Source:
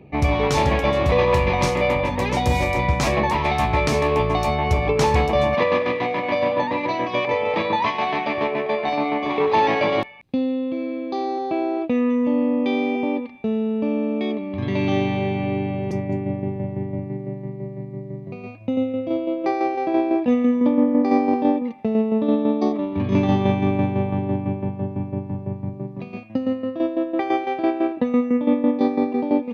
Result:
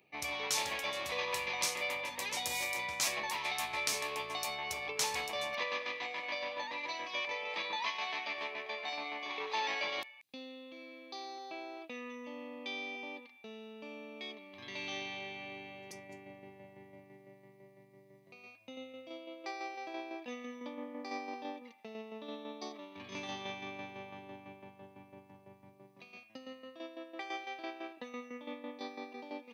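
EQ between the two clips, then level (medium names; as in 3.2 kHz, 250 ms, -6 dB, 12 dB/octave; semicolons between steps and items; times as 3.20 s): differentiator; 0.0 dB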